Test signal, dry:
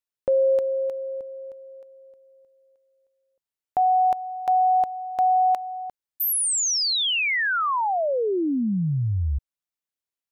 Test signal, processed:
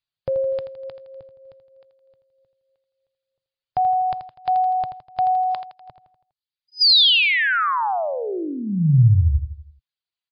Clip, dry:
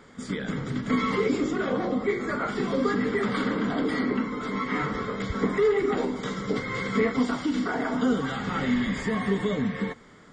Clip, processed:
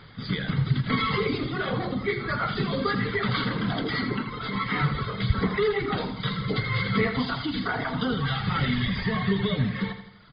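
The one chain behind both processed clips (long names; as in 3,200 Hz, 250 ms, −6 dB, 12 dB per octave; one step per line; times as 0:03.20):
reverb reduction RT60 1 s
octave-band graphic EQ 125/250/500/1,000/2,000/4,000 Hz +10/−11/−7/−3/−3/+4 dB
repeating echo 82 ms, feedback 50%, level −10 dB
level +7 dB
MP3 48 kbit/s 11,025 Hz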